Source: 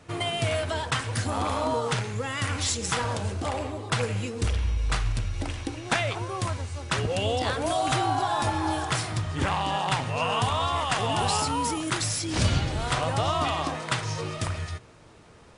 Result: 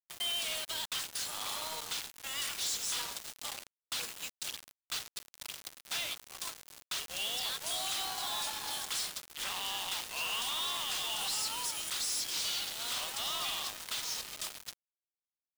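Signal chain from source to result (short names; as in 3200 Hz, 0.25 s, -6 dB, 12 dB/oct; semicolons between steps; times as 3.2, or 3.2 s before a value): HPF 1100 Hz 12 dB/oct; resonant high shelf 2600 Hz +9 dB, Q 1.5; limiter -13 dBFS, peak gain reduction 7.5 dB; soft clip -20 dBFS, distortion -15 dB; bit-crush 5-bit; gain -8.5 dB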